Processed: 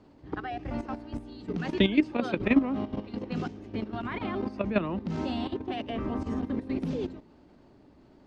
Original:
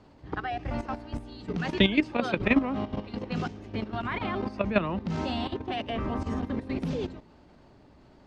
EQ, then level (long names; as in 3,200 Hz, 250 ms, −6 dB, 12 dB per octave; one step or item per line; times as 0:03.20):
parametric band 300 Hz +6.5 dB 1.3 octaves
−4.5 dB